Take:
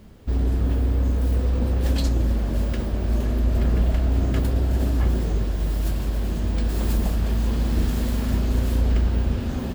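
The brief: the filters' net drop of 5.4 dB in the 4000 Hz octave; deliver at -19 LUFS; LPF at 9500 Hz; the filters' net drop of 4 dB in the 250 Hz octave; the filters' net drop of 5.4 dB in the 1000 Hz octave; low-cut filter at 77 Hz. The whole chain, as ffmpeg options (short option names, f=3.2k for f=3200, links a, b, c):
-af "highpass=77,lowpass=9.5k,equalizer=f=250:t=o:g=-4.5,equalizer=f=1k:t=o:g=-7,equalizer=f=4k:t=o:g=-6.5,volume=10dB"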